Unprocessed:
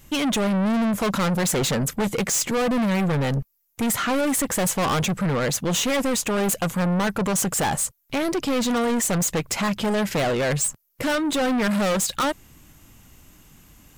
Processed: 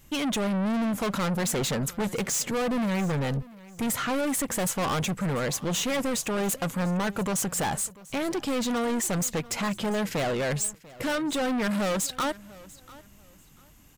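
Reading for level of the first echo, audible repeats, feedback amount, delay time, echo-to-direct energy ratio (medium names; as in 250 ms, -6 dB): -21.0 dB, 2, 25%, 692 ms, -20.5 dB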